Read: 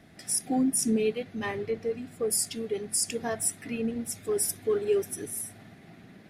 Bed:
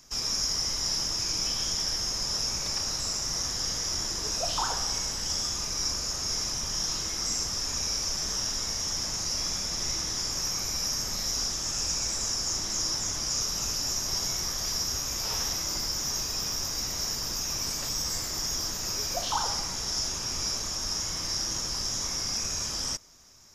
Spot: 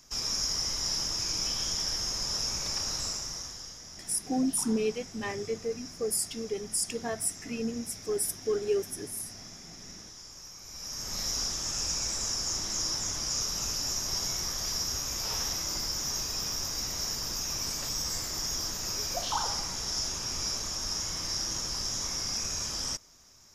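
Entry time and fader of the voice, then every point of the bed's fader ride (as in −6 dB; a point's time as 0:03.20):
3.80 s, −2.5 dB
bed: 0:03.04 −2 dB
0:03.85 −16.5 dB
0:10.60 −16.5 dB
0:11.19 −2 dB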